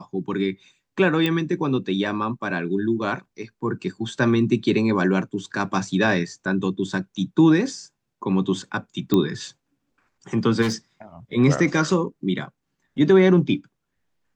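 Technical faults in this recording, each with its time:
0:01.26: click −10 dBFS
0:09.14: click −8 dBFS
0:10.61–0:10.74: clipping −19.5 dBFS

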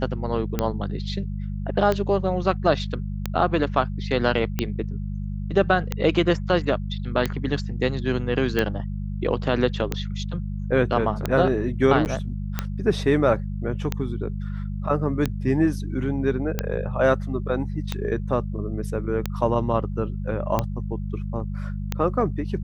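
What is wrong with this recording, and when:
mains hum 50 Hz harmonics 4 −29 dBFS
scratch tick 45 rpm −9 dBFS
0:12.05–0:12.06: drop-out 9.2 ms

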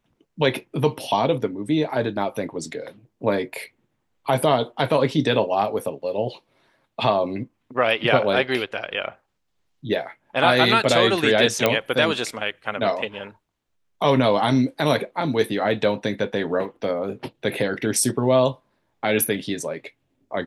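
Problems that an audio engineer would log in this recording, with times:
0:11.66: click −4 dBFS

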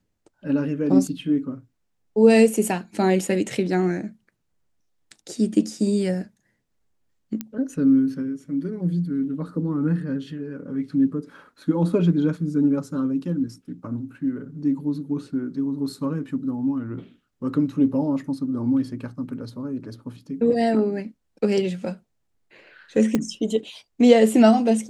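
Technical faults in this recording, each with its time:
0:07.41: click −14 dBFS
0:23.15: click −9 dBFS

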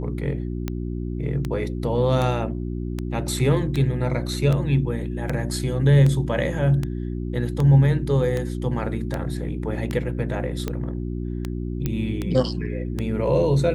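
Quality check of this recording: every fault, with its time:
mains hum 60 Hz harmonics 6 −28 dBFS
scratch tick 78 rpm −13 dBFS
0:11.86: click −11 dBFS

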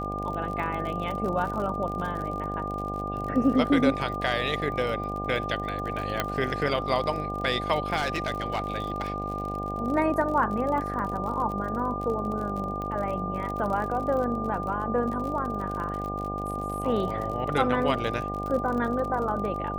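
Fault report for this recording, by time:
mains buzz 50 Hz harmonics 16 −34 dBFS
surface crackle 46 per second −33 dBFS
whistle 1,200 Hz −32 dBFS
0:06.20: click −10 dBFS
0:07.96–0:09.56: clipping −22.5 dBFS
0:12.82: click −23 dBFS

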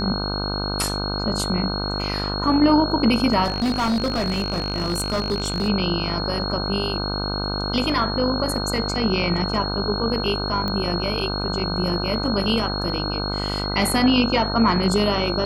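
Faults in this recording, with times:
mains buzz 50 Hz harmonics 31 −27 dBFS
whistle 4,300 Hz −28 dBFS
0:03.44–0:05.69: clipping −18 dBFS
0:10.68: click −14 dBFS

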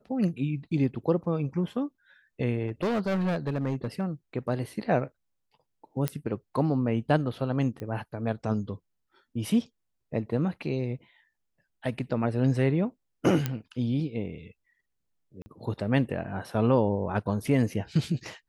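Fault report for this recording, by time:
0:02.67–0:04.05: clipping −24 dBFS
0:06.08: click −12 dBFS
0:07.80: click −25 dBFS
0:13.46: click −13 dBFS
0:15.42–0:15.46: drop-out 40 ms

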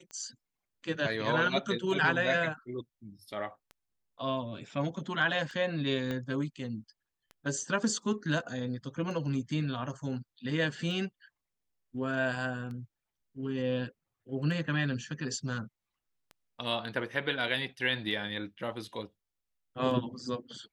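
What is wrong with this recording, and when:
scratch tick 33 1/3 rpm −32 dBFS
0:06.11: click −22 dBFS

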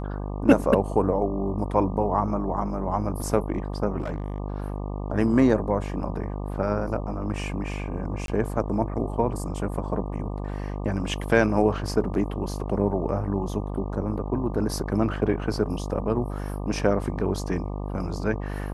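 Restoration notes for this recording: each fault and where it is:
mains buzz 50 Hz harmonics 24 −31 dBFS
0:03.98–0:04.38: clipping −24.5 dBFS
0:08.26–0:08.28: drop-out 22 ms

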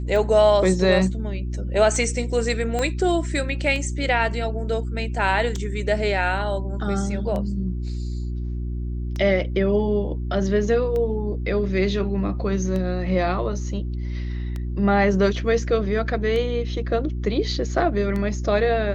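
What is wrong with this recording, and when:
mains hum 60 Hz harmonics 6 −27 dBFS
scratch tick 33 1/3 rpm
0:02.79: click −12 dBFS

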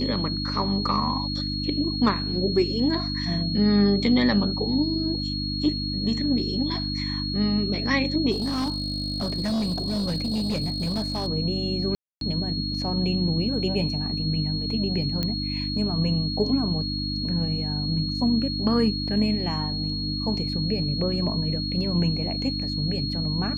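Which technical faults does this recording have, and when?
mains hum 50 Hz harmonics 6 −30 dBFS
whistle 4,300 Hz −30 dBFS
0:08.31–0:11.28: clipping −22.5 dBFS
0:11.95–0:12.21: drop-out 262 ms
0:15.23: click −13 dBFS

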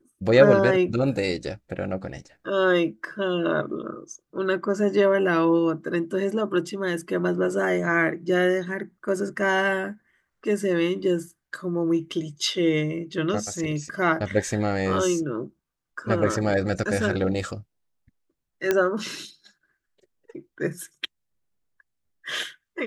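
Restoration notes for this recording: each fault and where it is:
0:18.71: click −8 dBFS

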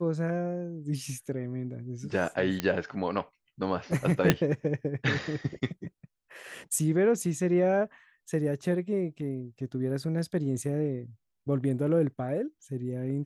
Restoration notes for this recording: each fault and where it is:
0:02.60: click −13 dBFS
0:04.30: click −5 dBFS

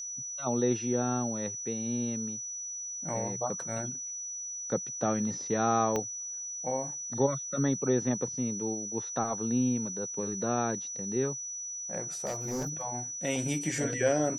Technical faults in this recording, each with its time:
whistle 5,900 Hz −36 dBFS
0:05.96: click −17 dBFS
0:12.25–0:12.83: clipping −29.5 dBFS

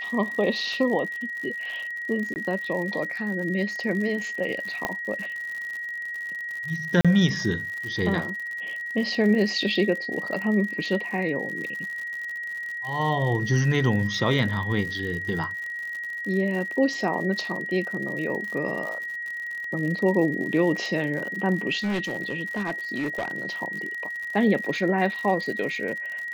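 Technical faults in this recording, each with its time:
surface crackle 80 per second −32 dBFS
whistle 1,900 Hz −30 dBFS
0:02.34–0:02.36: drop-out 19 ms
0:04.85: click −11 dBFS
0:07.01–0:07.05: drop-out 36 ms
0:21.80–0:23.49: clipping −23 dBFS

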